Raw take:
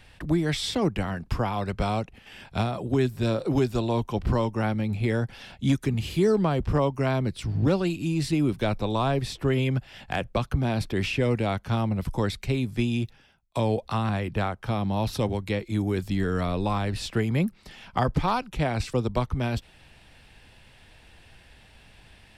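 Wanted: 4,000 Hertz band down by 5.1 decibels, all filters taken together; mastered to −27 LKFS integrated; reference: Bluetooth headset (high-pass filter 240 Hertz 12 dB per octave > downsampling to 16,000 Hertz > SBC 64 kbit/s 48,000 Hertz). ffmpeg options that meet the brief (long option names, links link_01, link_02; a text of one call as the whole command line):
ffmpeg -i in.wav -af "highpass=240,equalizer=frequency=4000:width_type=o:gain=-6.5,aresample=16000,aresample=44100,volume=3dB" -ar 48000 -c:a sbc -b:a 64k out.sbc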